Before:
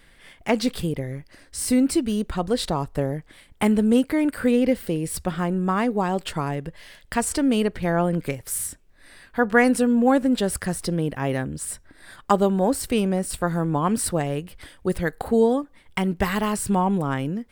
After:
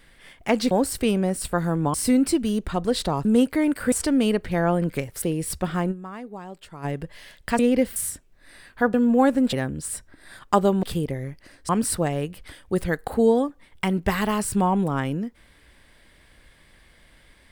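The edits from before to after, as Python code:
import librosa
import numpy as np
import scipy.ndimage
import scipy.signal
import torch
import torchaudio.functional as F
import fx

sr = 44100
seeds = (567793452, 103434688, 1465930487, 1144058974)

y = fx.edit(x, sr, fx.swap(start_s=0.71, length_s=0.86, other_s=12.6, other_length_s=1.23),
    fx.cut(start_s=2.88, length_s=0.94),
    fx.swap(start_s=4.49, length_s=0.37, other_s=7.23, other_length_s=1.3),
    fx.fade_down_up(start_s=5.55, length_s=0.94, db=-14.5, fade_s=0.16, curve='exp'),
    fx.cut(start_s=9.51, length_s=0.31),
    fx.cut(start_s=10.41, length_s=0.89), tone=tone)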